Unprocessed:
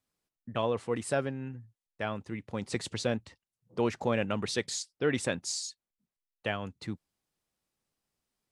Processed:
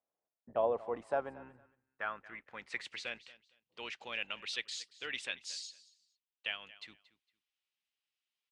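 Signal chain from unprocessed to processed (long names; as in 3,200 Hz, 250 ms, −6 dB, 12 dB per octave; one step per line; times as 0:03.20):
sub-octave generator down 2 octaves, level −3 dB
repeating echo 229 ms, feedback 22%, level −19 dB
band-pass filter sweep 660 Hz → 2,900 Hz, 0:00.68–0:03.40
level +3 dB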